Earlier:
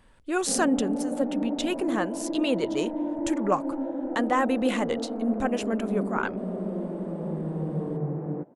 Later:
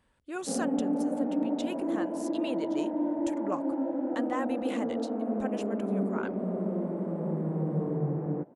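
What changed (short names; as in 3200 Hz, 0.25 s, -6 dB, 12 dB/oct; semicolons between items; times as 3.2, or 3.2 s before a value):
speech -10.0 dB; master: add HPF 43 Hz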